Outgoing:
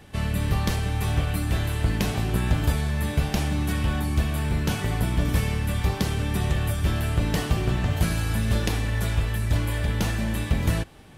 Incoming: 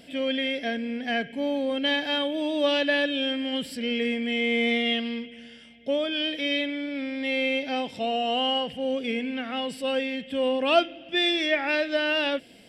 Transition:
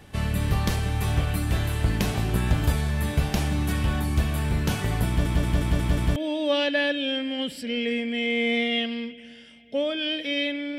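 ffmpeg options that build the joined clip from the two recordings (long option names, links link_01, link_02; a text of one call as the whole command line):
ffmpeg -i cue0.wav -i cue1.wav -filter_complex "[0:a]apad=whole_dur=10.78,atrim=end=10.78,asplit=6[link_01][link_02][link_03][link_04][link_05][link_06];[link_01]atrim=end=5.262[link_07];[link_02]atrim=start=5.078:end=5.262[link_08];[link_03]atrim=start=5.078:end=5.262[link_09];[link_04]atrim=start=5.078:end=5.262[link_10];[link_05]atrim=start=5.078:end=5.262[link_11];[link_06]atrim=start=5.078:end=5.262[link_12];[1:a]atrim=start=2.298:end=6.92[link_13];[link_07][link_08]acrossfade=duration=0.004:curve1=hsin:curve2=hsin[link_14];[link_14][link_09]acrossfade=duration=0.004:curve1=hsin:curve2=hsin[link_15];[link_15][link_10]acrossfade=duration=0.004:curve1=hsin:curve2=hsin[link_16];[link_16][link_11]acrossfade=duration=0.004:curve1=hsin:curve2=hsin[link_17];[link_17][link_12]acrossfade=duration=0.004:curve1=hsin:curve2=hsin[link_18];[link_18][link_13]acrossfade=duration=0.004:curve1=hsin:curve2=hsin" out.wav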